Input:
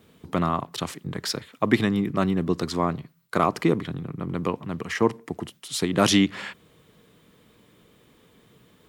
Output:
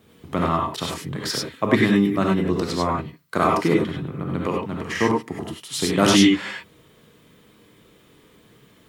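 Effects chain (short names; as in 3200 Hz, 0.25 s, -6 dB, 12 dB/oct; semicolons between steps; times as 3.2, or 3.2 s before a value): non-linear reverb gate 0.12 s rising, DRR -2 dB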